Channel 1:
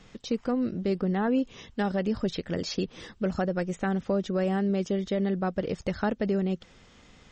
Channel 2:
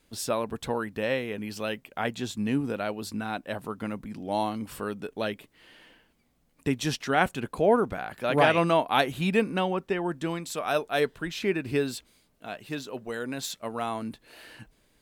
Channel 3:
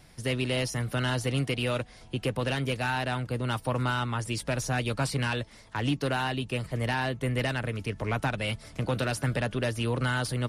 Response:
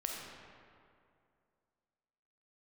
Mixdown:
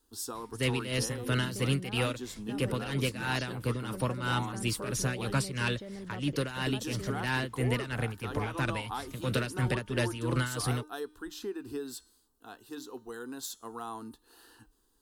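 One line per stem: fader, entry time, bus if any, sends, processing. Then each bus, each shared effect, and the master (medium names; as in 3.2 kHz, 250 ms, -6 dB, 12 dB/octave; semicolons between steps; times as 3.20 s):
-11.0 dB, 0.70 s, no send, peak limiter -24 dBFS, peak gain reduction 6.5 dB
-4.5 dB, 0.00 s, no send, de-hum 304.4 Hz, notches 35; compression, threshold -26 dBFS, peak gain reduction 10 dB; static phaser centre 600 Hz, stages 6
+1.0 dB, 0.35 s, no send, peaking EQ 740 Hz -10 dB 0.48 oct; tremolo 3 Hz, depth 76%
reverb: none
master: treble shelf 9.2 kHz +5.5 dB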